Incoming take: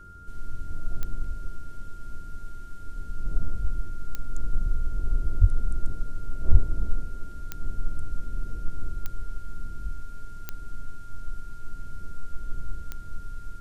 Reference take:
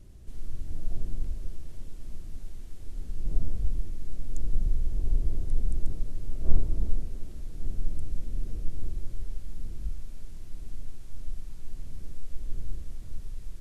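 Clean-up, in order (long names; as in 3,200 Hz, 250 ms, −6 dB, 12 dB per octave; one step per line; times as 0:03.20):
click removal
hum removal 90.4 Hz, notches 5
notch filter 1,400 Hz, Q 30
0:05.40–0:05.52: high-pass filter 140 Hz 24 dB per octave
0:06.51–0:06.63: high-pass filter 140 Hz 24 dB per octave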